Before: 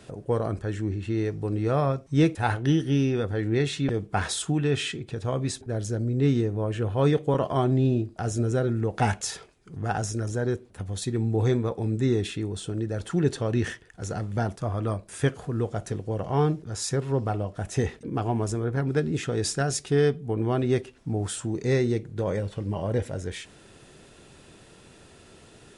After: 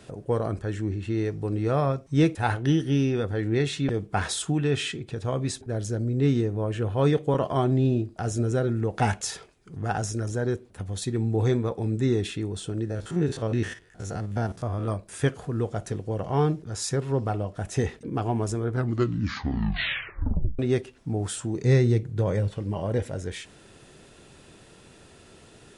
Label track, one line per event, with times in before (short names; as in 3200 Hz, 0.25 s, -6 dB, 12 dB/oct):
12.850000	14.880000	stepped spectrum every 50 ms
18.640000	18.640000	tape stop 1.95 s
21.590000	22.550000	bell 120 Hz +8 dB